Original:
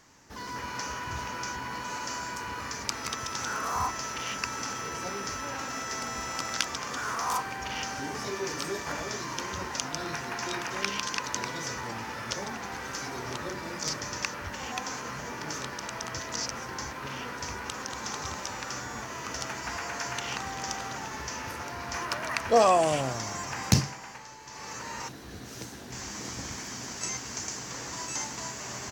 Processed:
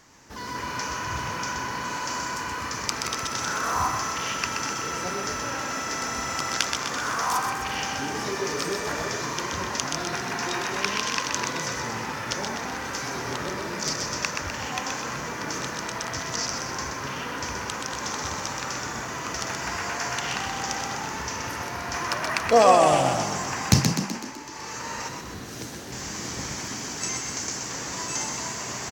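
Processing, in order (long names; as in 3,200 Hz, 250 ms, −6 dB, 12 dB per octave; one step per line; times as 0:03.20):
echo with shifted repeats 126 ms, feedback 57%, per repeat +31 Hz, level −5 dB
level +3.5 dB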